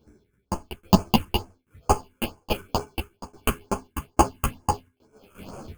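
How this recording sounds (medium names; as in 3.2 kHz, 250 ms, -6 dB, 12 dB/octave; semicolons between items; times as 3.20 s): aliases and images of a low sample rate 1.9 kHz, jitter 0%; phasing stages 4, 2.2 Hz, lowest notch 690–3700 Hz; tremolo saw down 1.2 Hz, depth 95%; a shimmering, thickened sound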